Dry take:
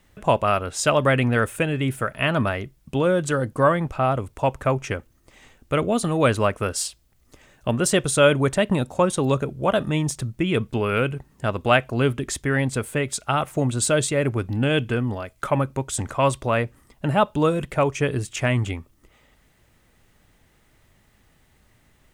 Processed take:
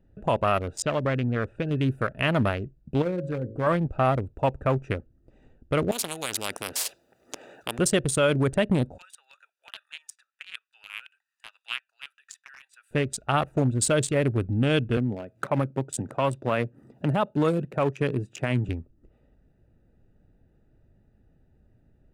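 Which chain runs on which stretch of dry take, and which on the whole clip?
0.82–1.71 s: compression 1.5:1, threshold -28 dBFS + distance through air 130 m
3.02–3.67 s: treble shelf 4.1 kHz -9.5 dB + de-hum 54.75 Hz, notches 11 + compression 1.5:1, threshold -31 dBFS
5.91–7.79 s: high-pass 620 Hz + spectrum-flattening compressor 4:1
8.98–12.91 s: Bessel high-pass 2.3 kHz, order 6 + three bands compressed up and down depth 70%
14.97–18.69 s: high-pass 120 Hz 24 dB/octave + upward compressor, threshold -36 dBFS
whole clip: local Wiener filter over 41 samples; peak limiter -12.5 dBFS

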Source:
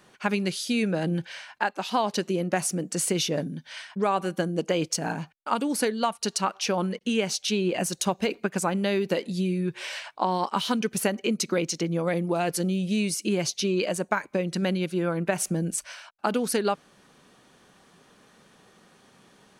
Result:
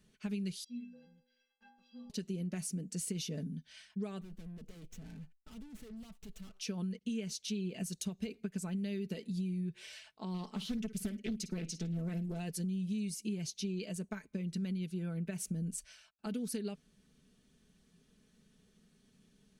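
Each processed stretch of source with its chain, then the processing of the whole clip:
0.64–2.10 s: block-companded coder 5-bit + low-pass 5.1 kHz 24 dB/octave + inharmonic resonator 240 Hz, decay 0.82 s, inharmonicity 0.03
4.21–6.60 s: median filter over 9 samples + valve stage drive 38 dB, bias 0.4
10.34–12.39 s: flutter echo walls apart 9.4 m, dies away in 0.21 s + loudspeaker Doppler distortion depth 0.52 ms
whole clip: amplifier tone stack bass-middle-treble 10-0-1; comb 4.6 ms, depth 51%; compression, threshold -41 dBFS; trim +7.5 dB

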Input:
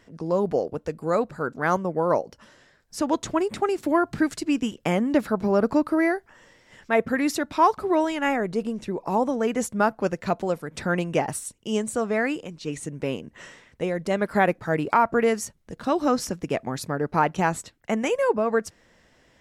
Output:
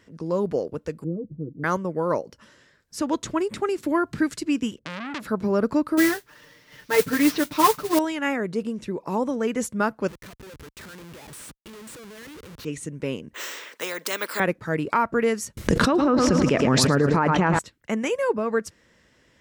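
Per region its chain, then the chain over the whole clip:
1.04–1.64 s: inverse Chebyshev low-pass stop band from 2 kHz, stop band 80 dB + comb 6.3 ms, depth 68%
4.79–5.27 s: level-controlled noise filter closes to 480 Hz, open at -20.5 dBFS + compression, threshold -20 dBFS + transformer saturation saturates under 2.6 kHz
5.97–7.99 s: CVSD coder 32 kbps + comb 6.7 ms, depth 92% + modulation noise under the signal 13 dB
10.08–12.65 s: bass shelf 420 Hz -8.5 dB + compression 3:1, threshold -39 dBFS + Schmitt trigger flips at -47.5 dBFS
13.34–14.40 s: high-pass 410 Hz 24 dB/octave + careless resampling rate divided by 2×, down filtered, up hold + spectrum-flattening compressor 2:1
15.57–17.59 s: low-pass that closes with the level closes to 2 kHz, closed at -18 dBFS + feedback delay 111 ms, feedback 54%, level -12.5 dB + level flattener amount 100%
whole clip: high-pass 42 Hz; peaking EQ 740 Hz -8.5 dB 0.46 oct

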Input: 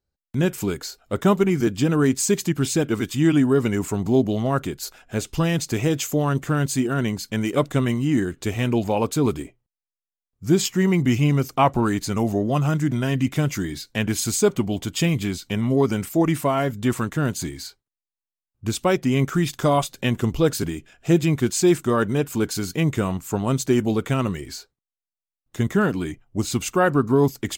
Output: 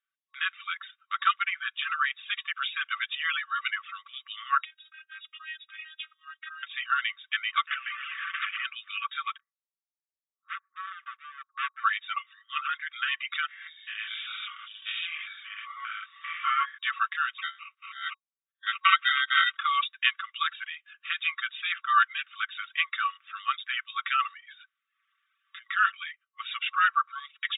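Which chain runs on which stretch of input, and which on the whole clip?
4.64–6.63 s: compression 2.5:1, threshold -35 dBFS + robot voice 314 Hz
7.67–8.65 s: one-bit delta coder 16 kbps, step -22 dBFS + compression 2.5:1, threshold -25 dBFS
9.37–11.84 s: Gaussian low-pass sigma 10 samples + peaking EQ 170 Hz +2.5 dB 0.39 oct + hard clipper -22.5 dBFS
13.48–16.78 s: spectrogram pixelated in time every 200 ms + doubling 19 ms -4.5 dB + three bands expanded up and down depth 70%
17.38–19.57 s: chunks repeated in reverse 379 ms, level -0.5 dB + tone controls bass +7 dB, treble -3 dB + sample-rate reducer 1.7 kHz
24.33–25.66 s: transient shaper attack -4 dB, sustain +3 dB + compression, threshold -36 dBFS + added noise brown -57 dBFS
whole clip: FFT band-pass 1.1–3.8 kHz; reverb removal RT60 0.7 s; comb 5.2 ms, depth 46%; trim +4.5 dB

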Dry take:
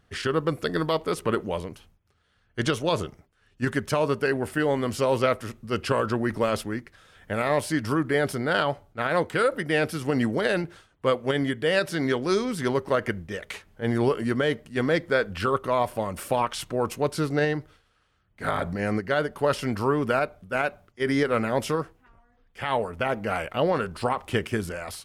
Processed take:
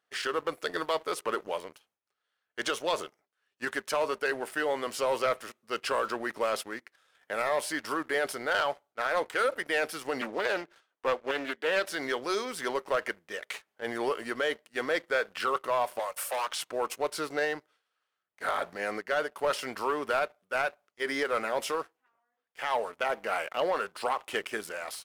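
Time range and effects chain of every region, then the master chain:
10.21–11.85 s: high-pass 170 Hz 24 dB/octave + distance through air 64 m + loudspeaker Doppler distortion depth 0.34 ms
15.99–16.47 s: steep high-pass 470 Hz 72 dB/octave + treble shelf 9 kHz +9 dB + hard clipper -25.5 dBFS
whole clip: high-pass 530 Hz 12 dB/octave; waveshaping leveller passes 2; trim -8.5 dB

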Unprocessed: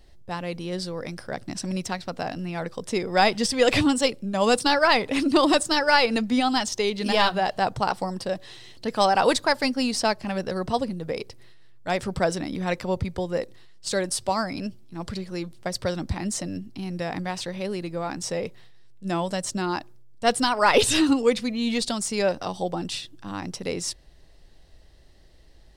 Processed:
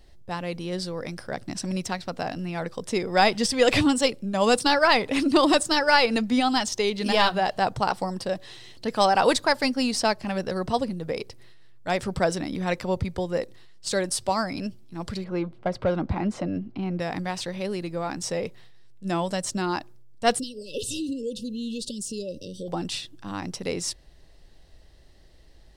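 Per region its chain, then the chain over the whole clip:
15.24–17.00 s: tone controls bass +4 dB, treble -13 dB + overdrive pedal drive 16 dB, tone 1 kHz, clips at -11 dBFS + band-stop 1.8 kHz, Q 8.9
20.39–22.68 s: peaking EQ 2.4 kHz -4 dB 2.3 oct + compression 3:1, threshold -30 dBFS + brick-wall FIR band-stop 590–2600 Hz
whole clip: none

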